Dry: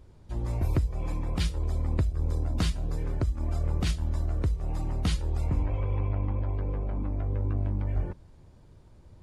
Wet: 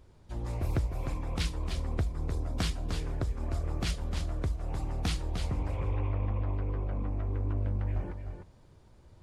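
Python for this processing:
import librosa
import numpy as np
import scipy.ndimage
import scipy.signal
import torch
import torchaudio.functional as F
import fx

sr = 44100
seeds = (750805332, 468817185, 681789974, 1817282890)

y = fx.low_shelf(x, sr, hz=460.0, db=-5.0)
y = y + 10.0 ** (-7.0 / 20.0) * np.pad(y, (int(303 * sr / 1000.0), 0))[:len(y)]
y = fx.doppler_dist(y, sr, depth_ms=0.39)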